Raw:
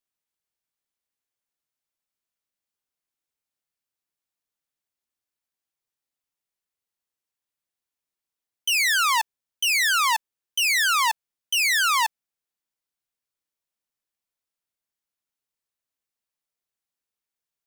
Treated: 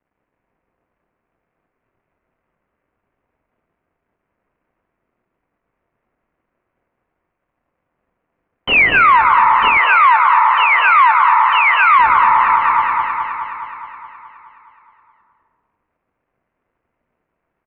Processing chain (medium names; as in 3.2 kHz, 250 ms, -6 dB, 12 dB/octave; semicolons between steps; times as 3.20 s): median filter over 25 samples; steep low-pass 2.4 kHz 36 dB/octave; band-stop 830 Hz, Q 17; doubling 25 ms -12 dB; echo whose repeats swap between lows and highs 105 ms, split 1.1 kHz, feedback 81%, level -6.5 dB; reverberation RT60 1.4 s, pre-delay 179 ms, DRR 3.5 dB; compression 2.5:1, threshold -36 dBFS, peak gain reduction 9.5 dB; 9.77–11.98 s: high-pass 520 Hz -> 740 Hz 24 dB/octave; loudness maximiser +28 dB; trim -1.5 dB